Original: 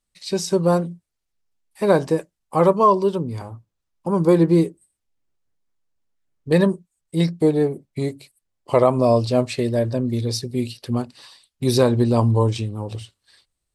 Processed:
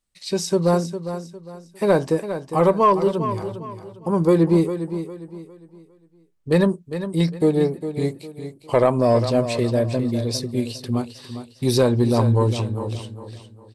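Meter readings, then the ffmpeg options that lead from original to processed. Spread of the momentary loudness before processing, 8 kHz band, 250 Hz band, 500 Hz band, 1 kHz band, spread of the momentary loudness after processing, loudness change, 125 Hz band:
12 LU, 0.0 dB, 0.0 dB, −0.5 dB, −0.5 dB, 18 LU, −1.0 dB, 0.0 dB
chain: -af "asoftclip=type=tanh:threshold=-5.5dB,aecho=1:1:405|810|1215|1620:0.299|0.0985|0.0325|0.0107"

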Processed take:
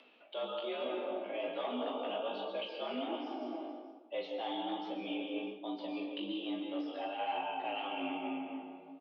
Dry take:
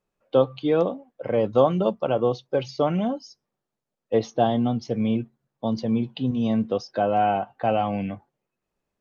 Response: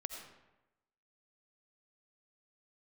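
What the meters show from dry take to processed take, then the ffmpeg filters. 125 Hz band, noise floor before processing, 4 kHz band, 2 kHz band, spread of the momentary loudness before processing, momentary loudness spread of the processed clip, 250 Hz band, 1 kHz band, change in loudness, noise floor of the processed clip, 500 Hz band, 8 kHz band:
below −30 dB, −85 dBFS, −3.0 dB, −6.0 dB, 8 LU, 5 LU, −14.5 dB, −12.5 dB, −15.0 dB, −58 dBFS, −15.5 dB, can't be measured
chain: -filter_complex "[0:a]acrossover=split=640[link_01][link_02];[link_01]alimiter=limit=-21dB:level=0:latency=1[link_03];[link_03][link_02]amix=inputs=2:normalize=0[link_04];[1:a]atrim=start_sample=2205,asetrate=27783,aresample=44100[link_05];[link_04][link_05]afir=irnorm=-1:irlink=0,aexciter=amount=3.6:drive=8.8:freq=2400,asplit=2[link_06][link_07];[link_07]adelay=40,volume=-6.5dB[link_08];[link_06][link_08]amix=inputs=2:normalize=0,aecho=1:1:452:0.0668,asoftclip=type=hard:threshold=-16dB,areverse,acompressor=threshold=-34dB:ratio=5,areverse,highpass=frequency=160:width_type=q:width=0.5412,highpass=frequency=160:width_type=q:width=1.307,lowpass=frequency=3100:width_type=q:width=0.5176,lowpass=frequency=3100:width_type=q:width=0.7071,lowpass=frequency=3100:width_type=q:width=1.932,afreqshift=72,flanger=delay=15.5:depth=4.2:speed=1.2,acompressor=mode=upward:threshold=-47dB:ratio=2.5,volume=1dB"

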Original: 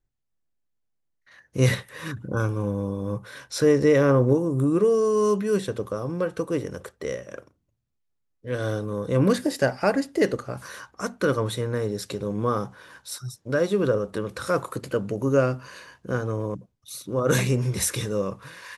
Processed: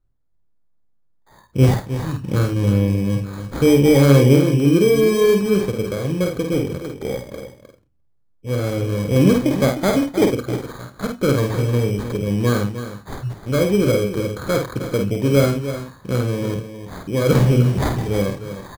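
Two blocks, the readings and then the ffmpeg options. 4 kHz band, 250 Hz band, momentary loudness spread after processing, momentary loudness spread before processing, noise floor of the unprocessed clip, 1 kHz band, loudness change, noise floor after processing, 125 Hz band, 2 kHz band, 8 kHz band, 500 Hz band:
+6.5 dB, +8.0 dB, 15 LU, 15 LU, −75 dBFS, +2.5 dB, +6.5 dB, −59 dBFS, +9.0 dB, +3.0 dB, +1.5 dB, +4.5 dB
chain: -filter_complex "[0:a]asplit=2[link_01][link_02];[link_02]aecho=0:1:308:0.282[link_03];[link_01][link_03]amix=inputs=2:normalize=0,acrusher=samples=16:mix=1:aa=0.000001,lowshelf=frequency=410:gain=11,asplit=2[link_04][link_05];[link_05]aecho=0:1:50|78:0.596|0.158[link_06];[link_04][link_06]amix=inputs=2:normalize=0,volume=-1.5dB"

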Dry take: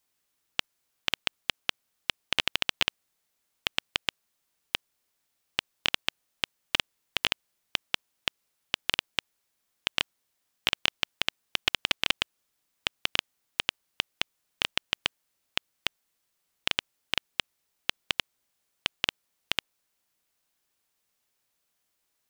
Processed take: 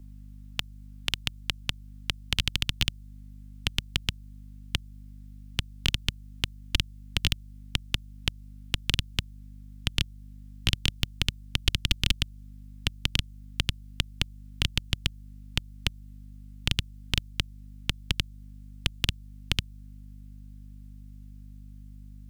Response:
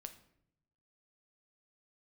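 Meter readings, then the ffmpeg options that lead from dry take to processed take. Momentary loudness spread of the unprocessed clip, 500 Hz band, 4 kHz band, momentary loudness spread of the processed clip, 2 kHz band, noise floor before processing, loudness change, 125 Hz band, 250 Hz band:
7 LU, −4.0 dB, −0.5 dB, 20 LU, −3.0 dB, −78 dBFS, 0.0 dB, +19.0 dB, +8.5 dB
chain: -filter_complex "[0:a]asubboost=boost=11:cutoff=210,aeval=exprs='val(0)+0.00447*(sin(2*PI*50*n/s)+sin(2*PI*2*50*n/s)/2+sin(2*PI*3*50*n/s)/3+sin(2*PI*4*50*n/s)/4+sin(2*PI*5*50*n/s)/5)':channel_layout=same,acrossover=split=160|3000[link_01][link_02][link_03];[link_02]acompressor=threshold=-39dB:ratio=4[link_04];[link_01][link_04][link_03]amix=inputs=3:normalize=0,volume=3dB"

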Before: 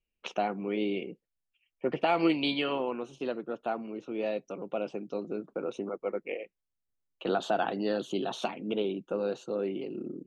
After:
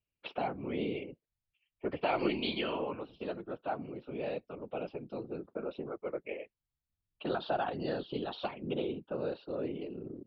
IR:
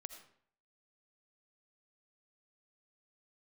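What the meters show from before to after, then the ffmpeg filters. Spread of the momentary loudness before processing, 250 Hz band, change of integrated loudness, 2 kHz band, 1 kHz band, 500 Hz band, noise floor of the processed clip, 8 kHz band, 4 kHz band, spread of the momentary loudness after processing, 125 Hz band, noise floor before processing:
9 LU, −5.5 dB, −4.5 dB, −4.5 dB, −4.5 dB, −4.5 dB, below −85 dBFS, can't be measured, −4.5 dB, 9 LU, −0.5 dB, −85 dBFS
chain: -af "afftfilt=real='hypot(re,im)*cos(2*PI*random(0))':imag='hypot(re,im)*sin(2*PI*random(1))':win_size=512:overlap=0.75,aresample=11025,aresample=44100,volume=1.5dB"

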